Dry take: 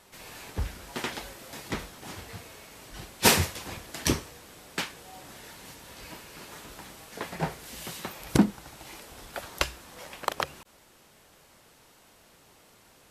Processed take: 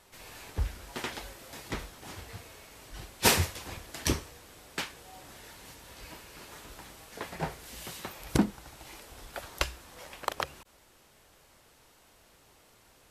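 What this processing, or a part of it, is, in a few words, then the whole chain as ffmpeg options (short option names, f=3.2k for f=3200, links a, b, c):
low shelf boost with a cut just above: -af "lowshelf=f=91:g=6.5,equalizer=f=180:t=o:w=1:g=-4,volume=-3dB"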